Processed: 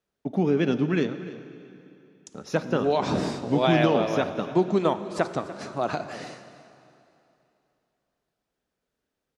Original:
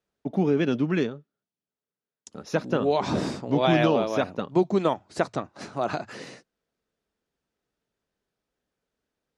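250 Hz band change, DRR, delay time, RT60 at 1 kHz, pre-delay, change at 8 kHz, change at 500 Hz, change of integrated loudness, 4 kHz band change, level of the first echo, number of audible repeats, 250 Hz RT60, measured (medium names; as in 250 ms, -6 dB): +0.5 dB, 10.0 dB, 294 ms, 2.9 s, 5 ms, +0.5 dB, +0.5 dB, +0.5 dB, +0.5 dB, -16.5 dB, 1, 2.9 s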